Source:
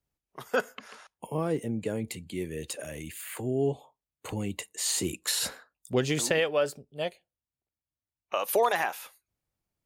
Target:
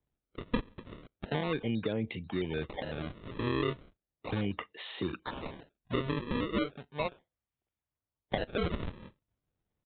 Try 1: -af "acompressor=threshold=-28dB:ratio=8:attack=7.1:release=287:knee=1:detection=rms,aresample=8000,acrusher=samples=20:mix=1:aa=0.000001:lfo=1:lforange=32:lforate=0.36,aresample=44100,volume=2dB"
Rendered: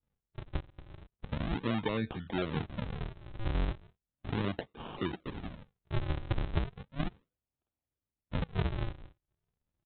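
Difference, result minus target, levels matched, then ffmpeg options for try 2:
sample-and-hold swept by an LFO: distortion +7 dB
-af "acompressor=threshold=-28dB:ratio=8:attack=7.1:release=287:knee=1:detection=rms,aresample=8000,acrusher=samples=6:mix=1:aa=0.000001:lfo=1:lforange=9.6:lforate=0.36,aresample=44100,volume=2dB"

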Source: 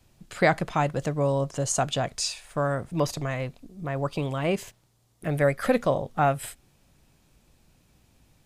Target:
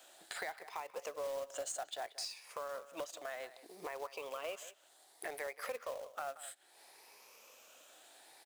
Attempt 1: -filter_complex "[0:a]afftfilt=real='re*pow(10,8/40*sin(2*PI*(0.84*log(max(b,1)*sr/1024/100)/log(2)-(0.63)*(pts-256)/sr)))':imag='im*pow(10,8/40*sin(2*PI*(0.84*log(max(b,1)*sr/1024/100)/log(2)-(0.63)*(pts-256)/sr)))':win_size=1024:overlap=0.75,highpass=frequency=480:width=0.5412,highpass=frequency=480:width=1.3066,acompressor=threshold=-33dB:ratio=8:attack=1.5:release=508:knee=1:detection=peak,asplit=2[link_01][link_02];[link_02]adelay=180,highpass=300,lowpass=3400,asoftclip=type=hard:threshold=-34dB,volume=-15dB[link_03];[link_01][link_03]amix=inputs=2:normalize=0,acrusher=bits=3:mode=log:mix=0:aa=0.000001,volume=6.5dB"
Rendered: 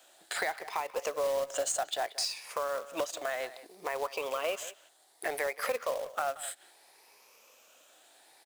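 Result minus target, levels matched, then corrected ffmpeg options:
downward compressor: peak gain reduction −9.5 dB
-filter_complex "[0:a]afftfilt=real='re*pow(10,8/40*sin(2*PI*(0.84*log(max(b,1)*sr/1024/100)/log(2)-(0.63)*(pts-256)/sr)))':imag='im*pow(10,8/40*sin(2*PI*(0.84*log(max(b,1)*sr/1024/100)/log(2)-(0.63)*(pts-256)/sr)))':win_size=1024:overlap=0.75,highpass=frequency=480:width=0.5412,highpass=frequency=480:width=1.3066,acompressor=threshold=-44dB:ratio=8:attack=1.5:release=508:knee=1:detection=peak,asplit=2[link_01][link_02];[link_02]adelay=180,highpass=300,lowpass=3400,asoftclip=type=hard:threshold=-34dB,volume=-15dB[link_03];[link_01][link_03]amix=inputs=2:normalize=0,acrusher=bits=3:mode=log:mix=0:aa=0.000001,volume=6.5dB"

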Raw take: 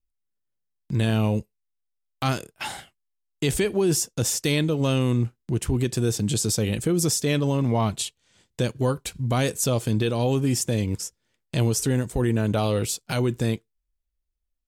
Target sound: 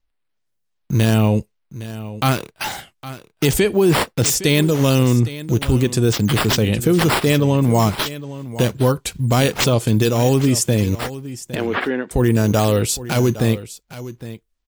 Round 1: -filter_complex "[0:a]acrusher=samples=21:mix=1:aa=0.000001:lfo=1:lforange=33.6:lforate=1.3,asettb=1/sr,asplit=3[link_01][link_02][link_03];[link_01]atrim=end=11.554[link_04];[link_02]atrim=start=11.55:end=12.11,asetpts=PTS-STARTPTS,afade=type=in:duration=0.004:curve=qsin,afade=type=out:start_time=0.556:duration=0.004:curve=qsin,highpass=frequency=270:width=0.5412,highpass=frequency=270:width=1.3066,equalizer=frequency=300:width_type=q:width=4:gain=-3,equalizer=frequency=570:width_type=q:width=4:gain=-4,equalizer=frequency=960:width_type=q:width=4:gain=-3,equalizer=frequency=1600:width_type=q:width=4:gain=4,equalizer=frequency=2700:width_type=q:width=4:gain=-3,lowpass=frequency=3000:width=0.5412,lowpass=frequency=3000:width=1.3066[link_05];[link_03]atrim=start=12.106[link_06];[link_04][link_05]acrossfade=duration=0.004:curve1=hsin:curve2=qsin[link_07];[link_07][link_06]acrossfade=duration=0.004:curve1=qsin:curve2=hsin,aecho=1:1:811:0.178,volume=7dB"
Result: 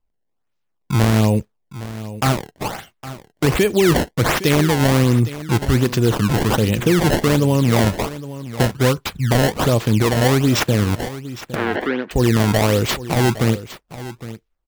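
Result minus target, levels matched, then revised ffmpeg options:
sample-and-hold swept by an LFO: distortion +7 dB
-filter_complex "[0:a]acrusher=samples=4:mix=1:aa=0.000001:lfo=1:lforange=6.4:lforate=1.3,asettb=1/sr,asplit=3[link_01][link_02][link_03];[link_01]atrim=end=11.554[link_04];[link_02]atrim=start=11.55:end=12.11,asetpts=PTS-STARTPTS,afade=type=in:duration=0.004:curve=qsin,afade=type=out:start_time=0.556:duration=0.004:curve=qsin,highpass=frequency=270:width=0.5412,highpass=frequency=270:width=1.3066,equalizer=frequency=300:width_type=q:width=4:gain=-3,equalizer=frequency=570:width_type=q:width=4:gain=-4,equalizer=frequency=960:width_type=q:width=4:gain=-3,equalizer=frequency=1600:width_type=q:width=4:gain=4,equalizer=frequency=2700:width_type=q:width=4:gain=-3,lowpass=frequency=3000:width=0.5412,lowpass=frequency=3000:width=1.3066[link_05];[link_03]atrim=start=12.106[link_06];[link_04][link_05]acrossfade=duration=0.004:curve1=hsin:curve2=qsin[link_07];[link_07][link_06]acrossfade=duration=0.004:curve1=qsin:curve2=hsin,aecho=1:1:811:0.178,volume=7dB"

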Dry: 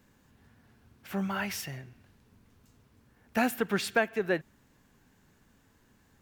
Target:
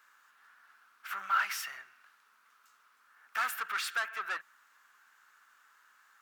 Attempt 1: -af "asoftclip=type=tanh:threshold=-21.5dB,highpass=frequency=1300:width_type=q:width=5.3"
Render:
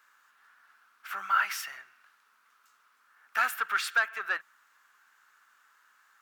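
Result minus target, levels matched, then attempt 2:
soft clipping: distortion −8 dB
-af "asoftclip=type=tanh:threshold=-31.5dB,highpass=frequency=1300:width_type=q:width=5.3"

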